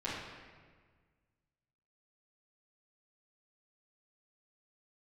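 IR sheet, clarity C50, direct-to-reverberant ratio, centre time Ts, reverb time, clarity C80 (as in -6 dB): 0.5 dB, -10.0 dB, 79 ms, 1.6 s, 3.0 dB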